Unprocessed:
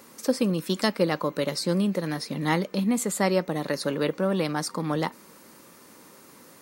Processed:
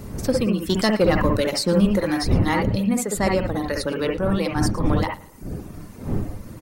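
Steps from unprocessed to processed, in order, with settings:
wind on the microphone 210 Hz −30 dBFS
reverb reduction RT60 1.1 s
0:00.69–0:02.35: leveller curve on the samples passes 1
in parallel at −8.5 dB: soft clipping −21 dBFS, distortion −10 dB
on the sum: repeating echo 113 ms, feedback 41%, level −19.5 dB
on a send at −2 dB: convolution reverb, pre-delay 55 ms

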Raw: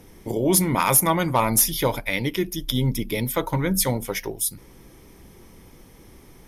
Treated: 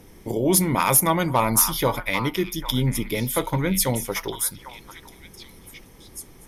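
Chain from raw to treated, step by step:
echo through a band-pass that steps 796 ms, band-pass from 1,200 Hz, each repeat 1.4 octaves, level −7 dB

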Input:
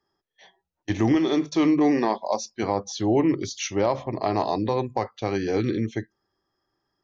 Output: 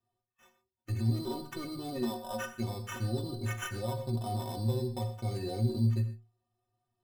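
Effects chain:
gate on every frequency bin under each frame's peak −25 dB strong
bass and treble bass +14 dB, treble +10 dB
brickwall limiter −13 dBFS, peak gain reduction 9.5 dB
sample-rate reduction 4,400 Hz, jitter 0%
harmonic generator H 6 −23 dB, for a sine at −8 dBFS
stiff-string resonator 110 Hz, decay 0.36 s, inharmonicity 0.03
convolution reverb, pre-delay 21 ms, DRR 10 dB
level −2 dB

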